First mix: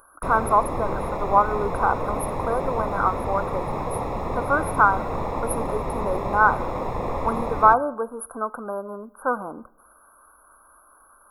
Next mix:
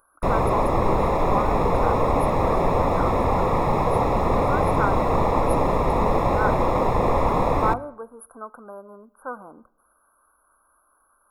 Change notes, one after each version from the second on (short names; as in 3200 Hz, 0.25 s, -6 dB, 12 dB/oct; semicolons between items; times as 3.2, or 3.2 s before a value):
speech -9.5 dB; background +7.0 dB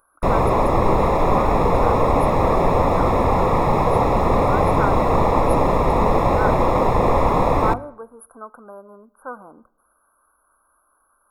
background +3.5 dB